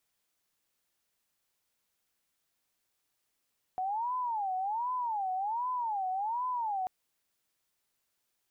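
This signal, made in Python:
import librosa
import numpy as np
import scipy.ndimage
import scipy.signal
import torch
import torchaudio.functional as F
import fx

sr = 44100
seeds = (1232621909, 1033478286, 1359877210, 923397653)

y = fx.siren(sr, length_s=3.09, kind='wail', low_hz=742.0, high_hz=1010.0, per_s=1.3, wave='sine', level_db=-30.0)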